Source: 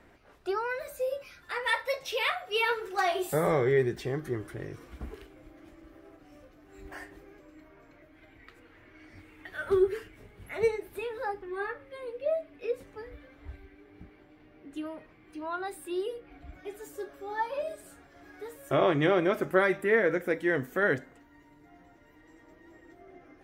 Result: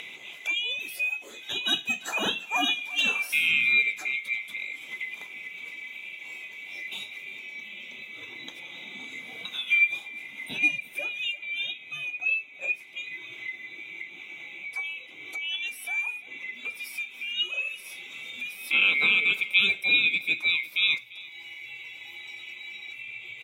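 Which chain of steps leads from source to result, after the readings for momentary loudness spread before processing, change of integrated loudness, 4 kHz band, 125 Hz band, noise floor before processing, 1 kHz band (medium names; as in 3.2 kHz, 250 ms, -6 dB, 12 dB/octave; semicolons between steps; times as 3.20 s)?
20 LU, +4.0 dB, +14.0 dB, under -15 dB, -58 dBFS, -7.5 dB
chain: split-band scrambler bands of 2 kHz; high-pass 230 Hz 12 dB/octave; upward compressor, threshold -31 dBFS; delay 344 ms -20 dB; trim +2 dB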